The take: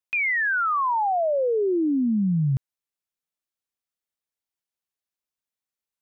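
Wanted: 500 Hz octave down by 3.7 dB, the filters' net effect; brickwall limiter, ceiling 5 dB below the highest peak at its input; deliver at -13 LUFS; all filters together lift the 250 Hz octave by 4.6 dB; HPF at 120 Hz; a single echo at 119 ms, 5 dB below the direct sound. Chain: high-pass 120 Hz; peaking EQ 250 Hz +8.5 dB; peaking EQ 500 Hz -8 dB; peak limiter -17 dBFS; delay 119 ms -5 dB; trim +9 dB

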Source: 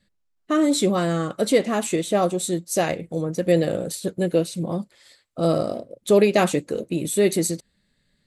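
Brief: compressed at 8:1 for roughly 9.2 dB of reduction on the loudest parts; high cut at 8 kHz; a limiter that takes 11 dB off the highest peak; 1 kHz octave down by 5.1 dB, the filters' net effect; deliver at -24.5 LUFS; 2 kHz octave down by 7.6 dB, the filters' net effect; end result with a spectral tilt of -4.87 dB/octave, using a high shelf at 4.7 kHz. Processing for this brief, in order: low-pass 8 kHz; peaking EQ 1 kHz -6 dB; peaking EQ 2 kHz -8.5 dB; treble shelf 4.7 kHz +3 dB; compression 8:1, threshold -23 dBFS; trim +9.5 dB; peak limiter -15.5 dBFS

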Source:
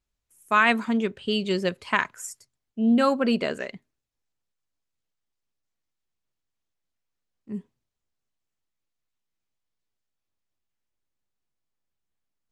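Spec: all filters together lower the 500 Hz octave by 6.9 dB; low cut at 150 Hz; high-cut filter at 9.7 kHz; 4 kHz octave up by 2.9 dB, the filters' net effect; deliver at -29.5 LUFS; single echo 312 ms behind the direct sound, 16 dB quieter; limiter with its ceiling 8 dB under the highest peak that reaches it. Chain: high-pass 150 Hz; low-pass 9.7 kHz; peaking EQ 500 Hz -8.5 dB; peaking EQ 4 kHz +4.5 dB; peak limiter -14.5 dBFS; delay 312 ms -16 dB; trim -1.5 dB

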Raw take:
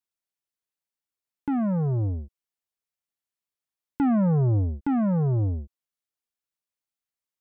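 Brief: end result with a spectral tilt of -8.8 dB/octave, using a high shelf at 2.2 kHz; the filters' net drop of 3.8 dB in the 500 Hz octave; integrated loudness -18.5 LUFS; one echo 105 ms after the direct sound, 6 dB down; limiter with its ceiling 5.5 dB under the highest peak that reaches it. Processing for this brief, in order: peaking EQ 500 Hz -5.5 dB; treble shelf 2.2 kHz +8.5 dB; peak limiter -24.5 dBFS; delay 105 ms -6 dB; trim +10 dB

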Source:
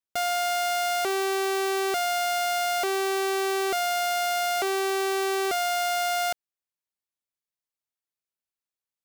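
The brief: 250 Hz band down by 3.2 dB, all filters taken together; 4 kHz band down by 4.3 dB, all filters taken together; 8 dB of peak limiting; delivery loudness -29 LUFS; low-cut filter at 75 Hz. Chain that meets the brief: high-pass 75 Hz; peaking EQ 250 Hz -8 dB; peaking EQ 4 kHz -6 dB; trim +5 dB; peak limiter -21.5 dBFS

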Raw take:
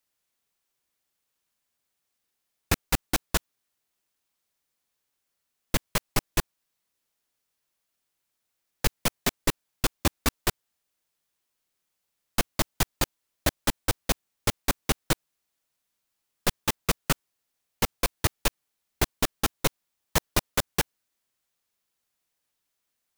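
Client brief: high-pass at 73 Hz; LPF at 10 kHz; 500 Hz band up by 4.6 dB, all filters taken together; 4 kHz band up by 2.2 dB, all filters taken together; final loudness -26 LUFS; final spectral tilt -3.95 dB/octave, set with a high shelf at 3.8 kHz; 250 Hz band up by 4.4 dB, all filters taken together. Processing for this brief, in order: high-pass 73 Hz; low-pass 10 kHz; peaking EQ 250 Hz +4.5 dB; peaking EQ 500 Hz +4.5 dB; treble shelf 3.8 kHz -7.5 dB; peaking EQ 4 kHz +7.5 dB; trim +2.5 dB

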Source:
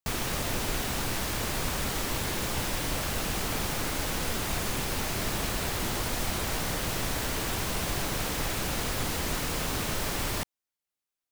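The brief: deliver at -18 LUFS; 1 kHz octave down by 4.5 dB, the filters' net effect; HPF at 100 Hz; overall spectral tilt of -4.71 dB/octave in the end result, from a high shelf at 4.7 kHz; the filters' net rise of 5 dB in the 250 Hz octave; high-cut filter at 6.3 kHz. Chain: high-pass 100 Hz; low-pass 6.3 kHz; peaking EQ 250 Hz +7 dB; peaking EQ 1 kHz -6 dB; treble shelf 4.7 kHz -6.5 dB; trim +14.5 dB

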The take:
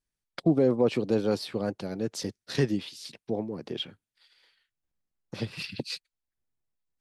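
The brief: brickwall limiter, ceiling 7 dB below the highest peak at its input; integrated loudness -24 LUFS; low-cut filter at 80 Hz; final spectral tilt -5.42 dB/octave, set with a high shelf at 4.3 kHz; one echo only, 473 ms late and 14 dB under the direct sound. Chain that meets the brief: high-pass 80 Hz; treble shelf 4.3 kHz -6 dB; peak limiter -19 dBFS; delay 473 ms -14 dB; trim +9 dB

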